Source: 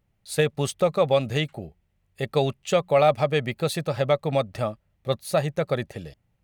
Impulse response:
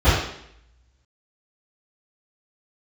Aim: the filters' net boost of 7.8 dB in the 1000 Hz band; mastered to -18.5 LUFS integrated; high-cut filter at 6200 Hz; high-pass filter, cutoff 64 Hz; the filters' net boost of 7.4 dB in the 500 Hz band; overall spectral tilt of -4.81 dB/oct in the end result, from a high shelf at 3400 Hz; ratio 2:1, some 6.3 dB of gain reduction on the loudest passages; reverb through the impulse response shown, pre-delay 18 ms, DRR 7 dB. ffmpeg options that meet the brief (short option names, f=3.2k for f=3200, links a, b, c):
-filter_complex "[0:a]highpass=64,lowpass=6.2k,equalizer=f=500:t=o:g=6,equalizer=f=1k:t=o:g=9,highshelf=f=3.4k:g=-4,acompressor=threshold=-19dB:ratio=2,asplit=2[a][b];[1:a]atrim=start_sample=2205,adelay=18[c];[b][c]afir=irnorm=-1:irlink=0,volume=-29.5dB[d];[a][d]amix=inputs=2:normalize=0,volume=3.5dB"